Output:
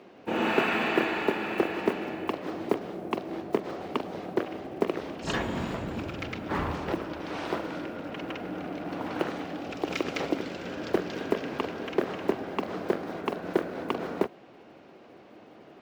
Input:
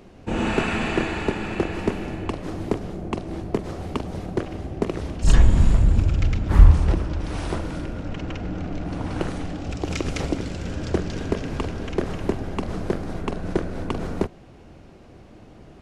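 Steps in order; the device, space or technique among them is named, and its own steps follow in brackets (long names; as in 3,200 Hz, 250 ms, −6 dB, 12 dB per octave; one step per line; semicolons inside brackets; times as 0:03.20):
early digital voice recorder (band-pass filter 300–4,000 Hz; one scale factor per block 7 bits)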